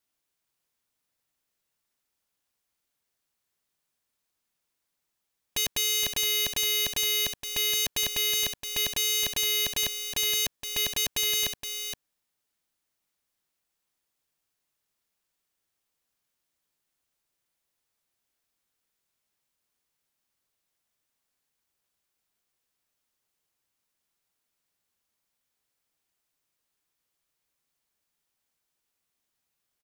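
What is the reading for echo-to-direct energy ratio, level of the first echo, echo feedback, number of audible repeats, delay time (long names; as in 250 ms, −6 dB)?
−8.5 dB, −8.5 dB, repeats not evenly spaced, 1, 469 ms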